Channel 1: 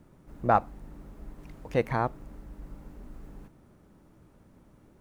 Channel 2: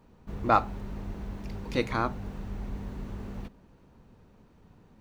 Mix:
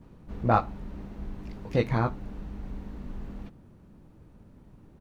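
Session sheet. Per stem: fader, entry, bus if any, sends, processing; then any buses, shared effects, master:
−5.0 dB, 0.00 s, no send, low-shelf EQ 350 Hz +11.5 dB
+2.5 dB, 15 ms, no send, low-pass filter 6,000 Hz 12 dB per octave; automatic ducking −7 dB, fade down 0.50 s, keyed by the first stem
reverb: not used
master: no processing

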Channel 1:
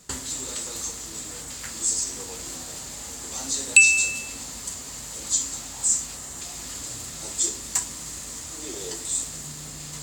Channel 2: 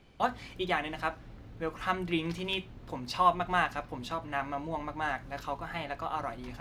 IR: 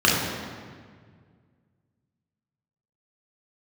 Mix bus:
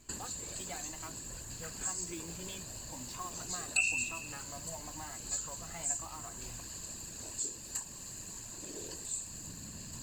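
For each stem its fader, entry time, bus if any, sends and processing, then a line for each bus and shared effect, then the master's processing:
−12.5 dB, 0.00 s, no send, EQ curve with evenly spaced ripples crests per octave 1.4, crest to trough 11 dB; downward compressor 1.5 to 1, threshold −29 dBFS, peak gain reduction 8.5 dB; random phases in short frames
−4.5 dB, 0.00 s, no send, downward compressor 3 to 1, threshold −38 dBFS, peak gain reduction 14.5 dB; noise that follows the level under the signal 12 dB; flanger whose copies keep moving one way rising 0.98 Hz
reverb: not used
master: low-shelf EQ 400 Hz +4 dB

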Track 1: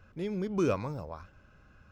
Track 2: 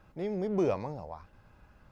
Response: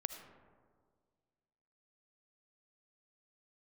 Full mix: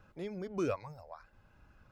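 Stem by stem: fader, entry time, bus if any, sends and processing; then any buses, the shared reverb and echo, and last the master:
−4.5 dB, 0.00 s, no send, reverb reduction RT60 1.1 s
−6.0 dB, 0.00 s, polarity flipped, no send, downward compressor 2.5 to 1, threshold −44 dBFS, peak gain reduction 13.5 dB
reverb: not used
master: no processing

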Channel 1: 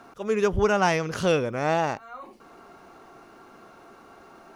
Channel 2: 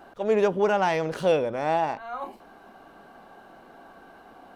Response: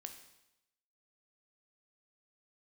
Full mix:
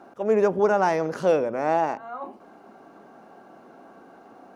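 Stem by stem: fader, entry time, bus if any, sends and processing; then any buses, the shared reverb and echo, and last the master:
−8.0 dB, 0.00 s, no send, no processing
−4.0 dB, 0.00 s, polarity flipped, send −5 dB, moving average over 7 samples; spectral tilt −4 dB per octave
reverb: on, RT60 0.90 s, pre-delay 13 ms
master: high-pass filter 250 Hz 12 dB per octave

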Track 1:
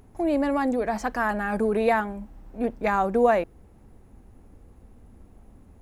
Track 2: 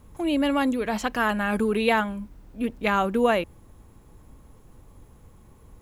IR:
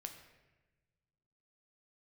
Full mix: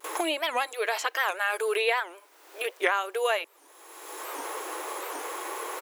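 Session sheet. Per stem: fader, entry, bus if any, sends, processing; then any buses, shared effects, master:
−12.5 dB, 0.00 s, no send, no processing
−5.0 dB, 4.7 ms, no send, noise gate with hold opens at −46 dBFS; tilt shelving filter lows −8 dB, about 660 Hz; multiband upward and downward compressor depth 100%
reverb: not used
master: linear-phase brick-wall high-pass 310 Hz; wow of a warped record 78 rpm, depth 250 cents

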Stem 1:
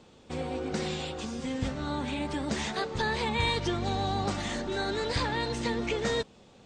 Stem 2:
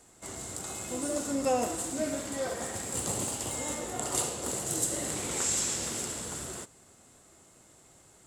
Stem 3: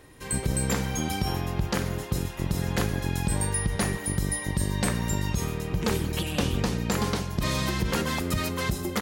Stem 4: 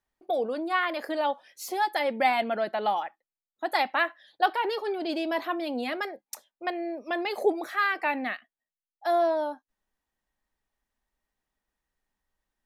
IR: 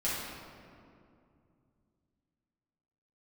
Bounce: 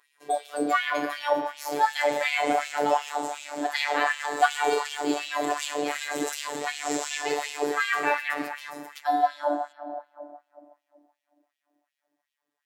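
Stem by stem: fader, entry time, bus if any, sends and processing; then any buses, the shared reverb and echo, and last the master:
−6.5 dB, 1.25 s, no send, high-pass filter 340 Hz
−0.5 dB, 1.45 s, no send, parametric band 9,800 Hz −13 dB 0.52 octaves
−12.5 dB, 0.00 s, muted 0:03.09–0:04.98, send −17 dB, no processing
−4.0 dB, 0.00 s, send −3.5 dB, no processing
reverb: on, RT60 2.5 s, pre-delay 6 ms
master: auto-filter high-pass sine 2.7 Hz 310–2,900 Hz; phases set to zero 146 Hz

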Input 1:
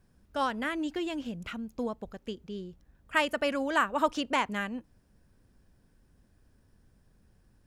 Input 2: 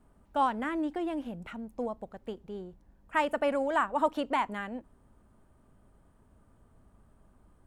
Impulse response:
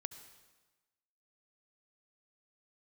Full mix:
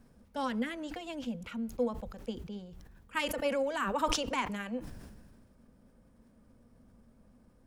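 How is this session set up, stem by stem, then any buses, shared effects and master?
+2.0 dB, 0.00 s, send −22 dB, pitch vibrato 14 Hz 8.6 cents; level that may fall only so fast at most 34 dB per second; automatic ducking −8 dB, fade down 0.45 s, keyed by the second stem
−6.0 dB, 0.00 s, polarity flipped, no send, hollow resonant body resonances 230/500/2,200 Hz, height 14 dB, ringing for 50 ms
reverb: on, RT60 1.2 s, pre-delay 63 ms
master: no processing

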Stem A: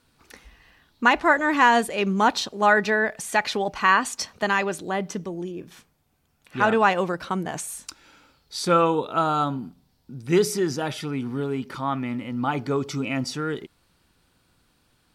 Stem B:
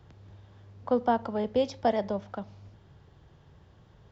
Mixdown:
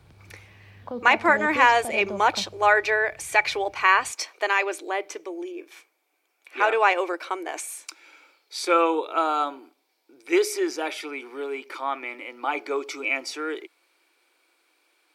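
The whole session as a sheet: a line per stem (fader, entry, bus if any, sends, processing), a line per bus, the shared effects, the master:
−0.5 dB, 0.00 s, no send, elliptic high-pass filter 320 Hz, stop band 40 dB; parametric band 2,300 Hz +14 dB 0.2 octaves
0.0 dB, 0.00 s, no send, brickwall limiter −24 dBFS, peak gain reduction 11 dB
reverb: not used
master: no processing

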